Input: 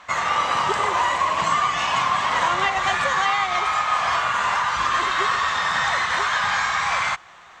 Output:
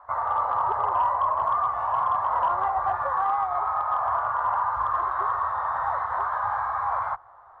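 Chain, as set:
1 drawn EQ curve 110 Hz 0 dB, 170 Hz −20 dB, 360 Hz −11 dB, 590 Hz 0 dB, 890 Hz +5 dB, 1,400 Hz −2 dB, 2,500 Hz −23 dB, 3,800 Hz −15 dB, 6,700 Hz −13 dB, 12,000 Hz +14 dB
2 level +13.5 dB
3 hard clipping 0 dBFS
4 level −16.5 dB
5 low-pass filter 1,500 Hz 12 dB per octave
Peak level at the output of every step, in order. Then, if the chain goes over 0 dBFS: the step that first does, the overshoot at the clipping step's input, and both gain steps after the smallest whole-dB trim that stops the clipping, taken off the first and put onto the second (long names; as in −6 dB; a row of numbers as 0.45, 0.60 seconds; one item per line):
−7.5, +6.0, 0.0, −16.5, −16.0 dBFS
step 2, 6.0 dB
step 2 +7.5 dB, step 4 −10.5 dB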